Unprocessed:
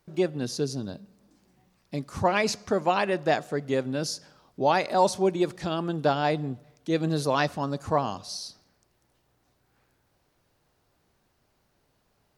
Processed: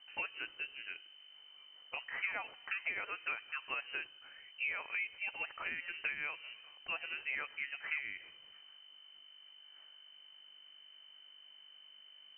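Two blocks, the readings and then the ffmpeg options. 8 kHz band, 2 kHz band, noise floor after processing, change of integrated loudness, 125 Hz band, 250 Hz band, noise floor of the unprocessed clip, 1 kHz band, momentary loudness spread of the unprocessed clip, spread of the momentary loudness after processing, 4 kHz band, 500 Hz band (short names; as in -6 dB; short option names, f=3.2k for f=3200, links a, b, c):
under -40 dB, -2.5 dB, -59 dBFS, -12.5 dB, under -35 dB, -34.5 dB, -71 dBFS, -21.5 dB, 12 LU, 18 LU, -9.5 dB, -30.0 dB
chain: -af "highpass=810,acompressor=threshold=-40dB:ratio=12,aeval=exprs='val(0)+0.000794*(sin(2*PI*50*n/s)+sin(2*PI*2*50*n/s)/2+sin(2*PI*3*50*n/s)/3+sin(2*PI*4*50*n/s)/4+sin(2*PI*5*50*n/s)/5)':c=same,lowpass=f=2.6k:t=q:w=0.5098,lowpass=f=2.6k:t=q:w=0.6013,lowpass=f=2.6k:t=q:w=0.9,lowpass=f=2.6k:t=q:w=2.563,afreqshift=-3100,volume=4.5dB"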